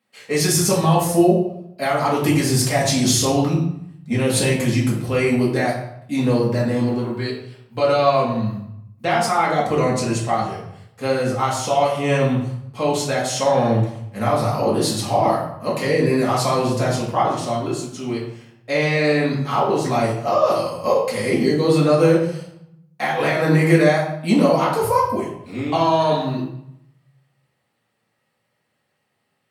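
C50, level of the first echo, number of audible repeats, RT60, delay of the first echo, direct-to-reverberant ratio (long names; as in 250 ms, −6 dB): 4.5 dB, no echo audible, no echo audible, 0.75 s, no echo audible, −6.5 dB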